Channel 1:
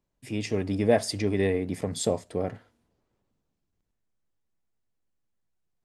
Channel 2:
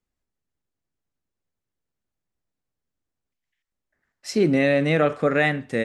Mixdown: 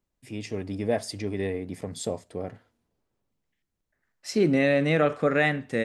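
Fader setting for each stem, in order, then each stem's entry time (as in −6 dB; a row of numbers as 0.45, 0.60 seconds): −4.5, −2.5 decibels; 0.00, 0.00 seconds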